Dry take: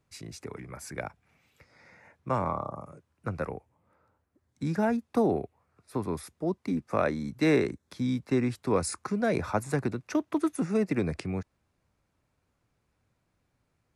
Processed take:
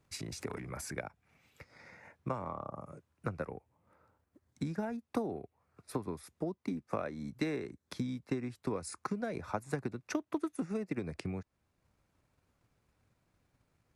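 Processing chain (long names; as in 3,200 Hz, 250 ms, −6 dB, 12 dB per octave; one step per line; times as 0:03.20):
downward compressor 2.5 to 1, threshold −41 dBFS, peak gain reduction 14.5 dB
transient designer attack +5 dB, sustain +11 dB, from 0:00.93 sustain −3 dB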